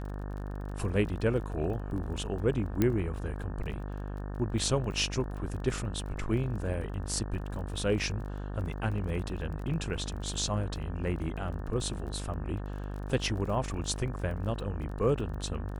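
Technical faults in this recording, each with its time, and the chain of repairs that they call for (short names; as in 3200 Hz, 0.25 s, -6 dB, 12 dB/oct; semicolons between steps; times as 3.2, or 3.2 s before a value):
buzz 50 Hz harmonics 36 -37 dBFS
crackle 30/s -40 dBFS
2.82 pop -13 dBFS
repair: de-click; de-hum 50 Hz, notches 36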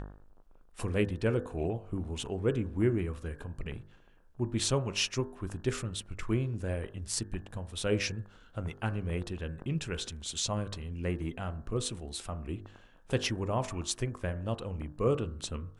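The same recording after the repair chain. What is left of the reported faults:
none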